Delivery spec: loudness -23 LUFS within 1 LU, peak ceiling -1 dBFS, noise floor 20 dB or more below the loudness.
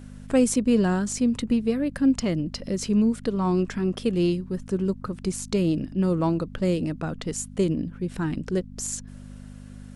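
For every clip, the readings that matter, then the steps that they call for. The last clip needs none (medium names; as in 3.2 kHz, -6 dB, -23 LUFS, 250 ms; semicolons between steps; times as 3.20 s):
hum 50 Hz; highest harmonic 250 Hz; hum level -40 dBFS; loudness -25.5 LUFS; peak level -9.0 dBFS; loudness target -23.0 LUFS
-> de-hum 50 Hz, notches 5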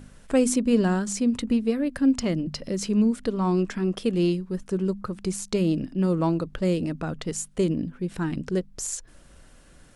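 hum not found; loudness -25.5 LUFS; peak level -10.0 dBFS; loudness target -23.0 LUFS
-> trim +2.5 dB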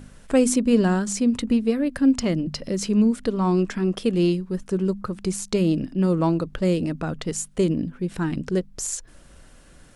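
loudness -23.0 LUFS; peak level -7.5 dBFS; noise floor -49 dBFS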